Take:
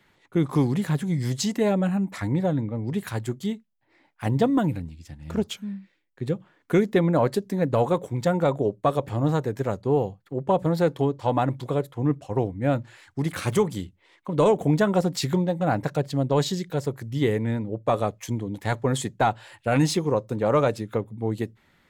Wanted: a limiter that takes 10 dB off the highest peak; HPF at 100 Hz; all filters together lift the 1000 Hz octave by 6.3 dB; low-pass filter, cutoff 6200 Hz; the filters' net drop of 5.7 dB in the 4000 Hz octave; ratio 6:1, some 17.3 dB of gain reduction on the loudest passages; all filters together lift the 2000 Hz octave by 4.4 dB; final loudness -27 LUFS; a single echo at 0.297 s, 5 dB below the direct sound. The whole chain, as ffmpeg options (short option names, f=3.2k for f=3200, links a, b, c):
-af "highpass=100,lowpass=6.2k,equalizer=f=1k:t=o:g=8,equalizer=f=2k:t=o:g=4,equalizer=f=4k:t=o:g=-8,acompressor=threshold=-32dB:ratio=6,alimiter=level_in=2.5dB:limit=-24dB:level=0:latency=1,volume=-2.5dB,aecho=1:1:297:0.562,volume=10.5dB"